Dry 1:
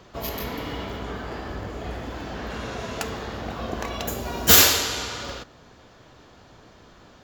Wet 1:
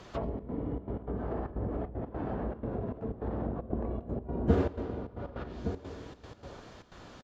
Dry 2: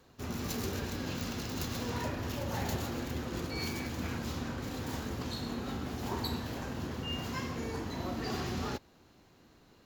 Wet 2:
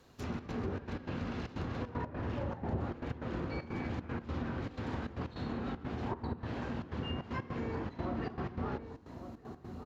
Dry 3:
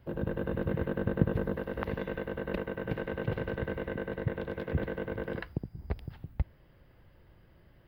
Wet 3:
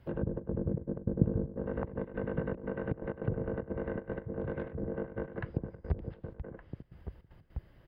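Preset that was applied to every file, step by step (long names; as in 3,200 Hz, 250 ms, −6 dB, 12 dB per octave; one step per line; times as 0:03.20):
treble cut that deepens with the level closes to 430 Hz, closed at −28 dBFS
slap from a distant wall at 200 metres, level −9 dB
gate pattern "xxxx.xxx.x." 154 BPM −12 dB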